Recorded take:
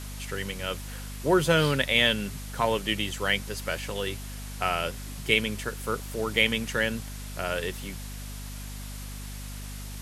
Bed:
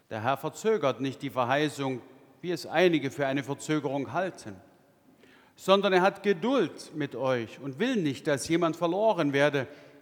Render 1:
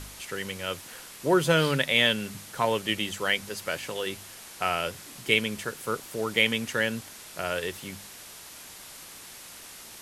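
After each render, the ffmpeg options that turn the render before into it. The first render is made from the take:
ffmpeg -i in.wav -af "bandreject=frequency=50:width_type=h:width=4,bandreject=frequency=100:width_type=h:width=4,bandreject=frequency=150:width_type=h:width=4,bandreject=frequency=200:width_type=h:width=4,bandreject=frequency=250:width_type=h:width=4" out.wav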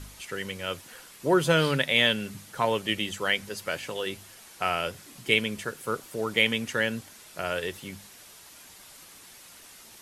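ffmpeg -i in.wav -af "afftdn=noise_reduction=6:noise_floor=-46" out.wav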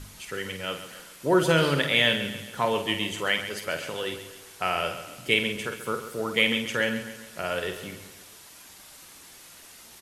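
ffmpeg -i in.wav -filter_complex "[0:a]asplit=2[link_01][link_02];[link_02]adelay=49,volume=-8dB[link_03];[link_01][link_03]amix=inputs=2:normalize=0,aecho=1:1:135|270|405|540|675:0.266|0.13|0.0639|0.0313|0.0153" out.wav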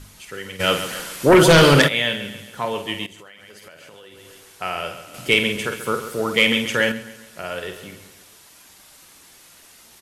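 ffmpeg -i in.wav -filter_complex "[0:a]asplit=3[link_01][link_02][link_03];[link_01]afade=type=out:start_time=0.59:duration=0.02[link_04];[link_02]aeval=exprs='0.473*sin(PI/2*3.16*val(0)/0.473)':channel_layout=same,afade=type=in:start_time=0.59:duration=0.02,afade=type=out:start_time=1.87:duration=0.02[link_05];[link_03]afade=type=in:start_time=1.87:duration=0.02[link_06];[link_04][link_05][link_06]amix=inputs=3:normalize=0,asettb=1/sr,asplit=3[link_07][link_08][link_09];[link_07]atrim=end=3.064[link_10];[link_08]atrim=start=3.06:end=4.46,asetpts=PTS-STARTPTS,afade=type=in:duration=0.004:curve=qsin,afade=type=out:start_time=1.396:duration=0.004:curve=qsin,acompressor=threshold=-39dB:ratio=20:attack=3.2:release=140:knee=1:detection=peak[link_11];[link_09]atrim=start=4.456[link_12];[link_10][link_11]acrossfade=duration=0.004:curve1=hsin:curve2=qsin[link_13];[link_13][link_12]acrossfade=duration=0.004:curve1=qsin:curve2=hsin,asettb=1/sr,asplit=3[link_14][link_15][link_16];[link_14]atrim=end=5.144[link_17];[link_15]atrim=start=5.14:end=6.92,asetpts=PTS-STARTPTS,afade=type=in:duration=0.004:curve=qsin,afade=type=out:start_time=1.776:duration=0.004:curve=qsin,acontrast=76[link_18];[link_16]atrim=start=6.916[link_19];[link_17][link_18]acrossfade=duration=0.004:curve1=hsin:curve2=qsin[link_20];[link_20][link_19]acrossfade=duration=0.004:curve1=qsin:curve2=hsin" out.wav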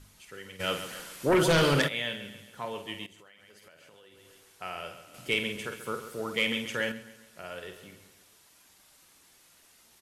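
ffmpeg -i in.wav -af "volume=-11.5dB" out.wav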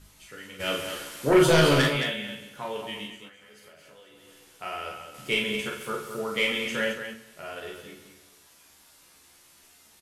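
ffmpeg -i in.wav -filter_complex "[0:a]asplit=2[link_01][link_02];[link_02]adelay=14,volume=-4dB[link_03];[link_01][link_03]amix=inputs=2:normalize=0,aecho=1:1:37.9|218.7:0.631|0.398" out.wav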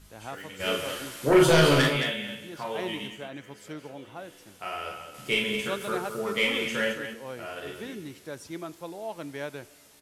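ffmpeg -i in.wav -i bed.wav -filter_complex "[1:a]volume=-12dB[link_01];[0:a][link_01]amix=inputs=2:normalize=0" out.wav

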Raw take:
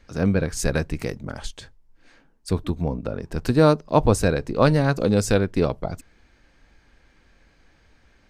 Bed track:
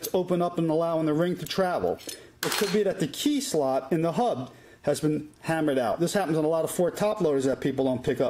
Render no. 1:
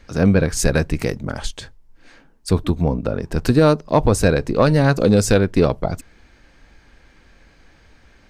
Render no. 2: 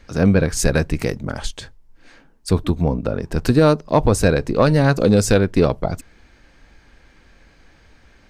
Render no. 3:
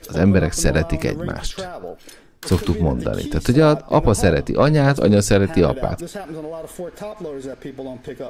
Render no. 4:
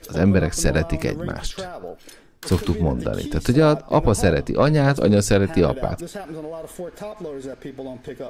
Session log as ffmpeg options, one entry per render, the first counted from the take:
ffmpeg -i in.wav -af "alimiter=limit=-8.5dB:level=0:latency=1:release=203,acontrast=69" out.wav
ffmpeg -i in.wav -af anull out.wav
ffmpeg -i in.wav -i bed.wav -filter_complex "[1:a]volume=-6dB[link_01];[0:a][link_01]amix=inputs=2:normalize=0" out.wav
ffmpeg -i in.wav -af "volume=-2dB" out.wav

